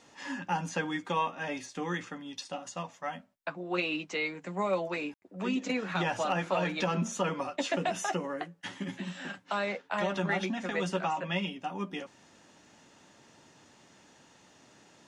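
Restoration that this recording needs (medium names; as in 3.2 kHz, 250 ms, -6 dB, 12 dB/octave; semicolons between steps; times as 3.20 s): clip repair -19 dBFS; room tone fill 5.14–5.22 s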